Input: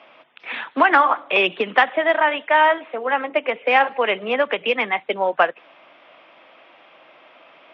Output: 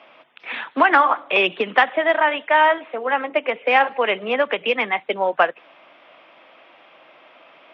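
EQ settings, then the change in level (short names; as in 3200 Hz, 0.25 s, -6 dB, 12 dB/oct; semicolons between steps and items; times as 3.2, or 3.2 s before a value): notches 60/120 Hz; 0.0 dB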